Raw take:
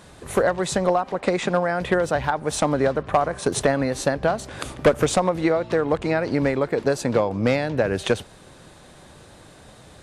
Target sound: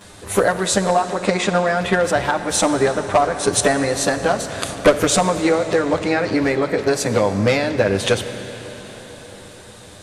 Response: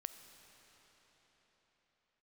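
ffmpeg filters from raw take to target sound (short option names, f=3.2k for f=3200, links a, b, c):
-filter_complex "[0:a]asplit=2[a][b];[1:a]atrim=start_sample=2205,highshelf=f=2.3k:g=8.5,adelay=10[c];[b][c]afir=irnorm=-1:irlink=0,volume=6dB[d];[a][d]amix=inputs=2:normalize=0,volume=-1dB"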